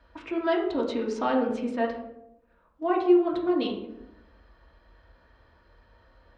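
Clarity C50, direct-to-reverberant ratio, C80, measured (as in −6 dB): 6.0 dB, −2.0 dB, 9.0 dB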